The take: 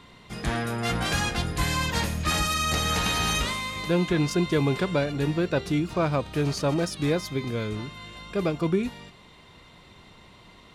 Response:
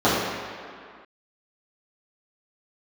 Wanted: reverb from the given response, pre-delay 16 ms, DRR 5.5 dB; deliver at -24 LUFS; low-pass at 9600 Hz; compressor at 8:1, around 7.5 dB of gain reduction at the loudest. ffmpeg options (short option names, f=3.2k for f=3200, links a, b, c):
-filter_complex "[0:a]lowpass=9.6k,acompressor=threshold=-27dB:ratio=8,asplit=2[a][b];[1:a]atrim=start_sample=2205,adelay=16[c];[b][c]afir=irnorm=-1:irlink=0,volume=-28.5dB[d];[a][d]amix=inputs=2:normalize=0,volume=6.5dB"